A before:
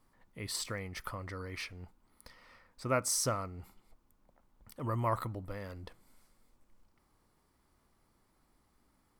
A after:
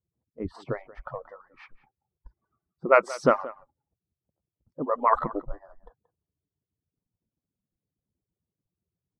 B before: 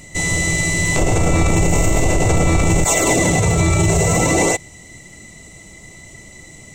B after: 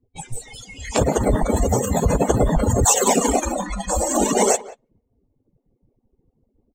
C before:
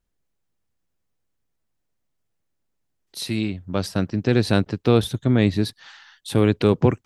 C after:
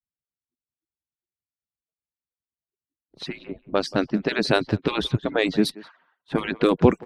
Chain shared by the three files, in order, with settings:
harmonic-percussive separation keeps percussive; in parallel at -3 dB: compression, threshold -28 dBFS; on the sum: level-controlled noise filter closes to 330 Hz, open at -18 dBFS; spectral noise reduction 22 dB; speakerphone echo 180 ms, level -18 dB; peak normalisation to -3 dBFS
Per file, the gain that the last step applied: +11.0 dB, +2.0 dB, +1.5 dB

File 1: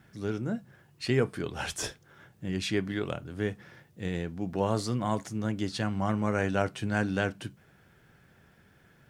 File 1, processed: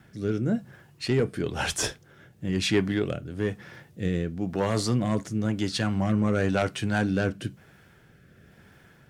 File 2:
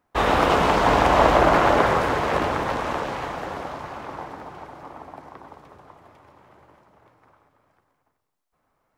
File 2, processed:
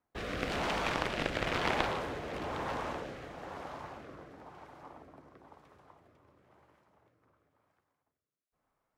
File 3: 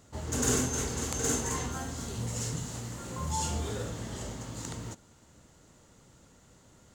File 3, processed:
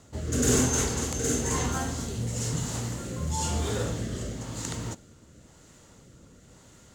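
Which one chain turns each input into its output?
Chebyshev shaper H 3 -9 dB, 7 -23 dB, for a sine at -2.5 dBFS; rotary cabinet horn 1 Hz; peak normalisation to -12 dBFS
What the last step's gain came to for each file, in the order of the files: +12.0 dB, -4.0 dB, +12.0 dB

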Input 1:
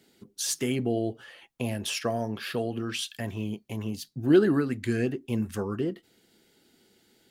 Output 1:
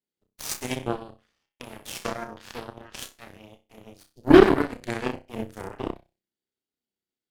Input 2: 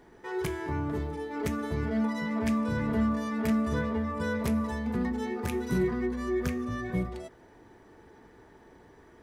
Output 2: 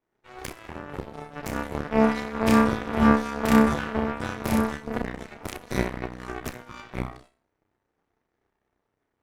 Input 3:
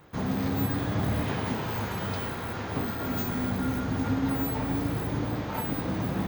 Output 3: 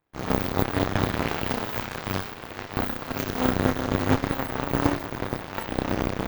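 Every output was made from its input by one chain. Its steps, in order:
dynamic bell 180 Hz, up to -7 dB, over -46 dBFS, Q 3.3; flutter echo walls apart 5.4 m, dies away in 0.53 s; Chebyshev shaper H 4 -17 dB, 6 -30 dB, 7 -17 dB, 8 -31 dB, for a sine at -7 dBFS; peak normalisation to -2 dBFS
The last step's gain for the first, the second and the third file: +5.0 dB, +10.5 dB, +11.0 dB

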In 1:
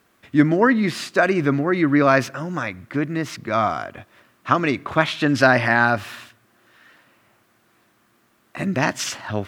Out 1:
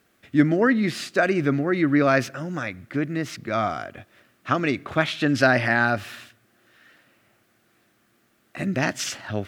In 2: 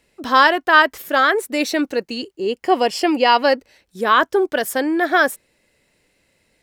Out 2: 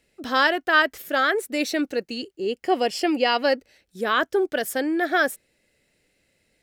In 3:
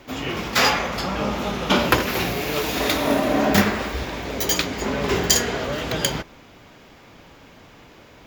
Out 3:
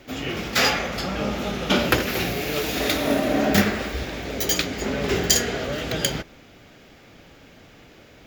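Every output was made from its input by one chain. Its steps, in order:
peaking EQ 1 kHz -9 dB 0.41 oct; normalise loudness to -23 LUFS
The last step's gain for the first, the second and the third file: -2.5 dB, -4.0 dB, -1.0 dB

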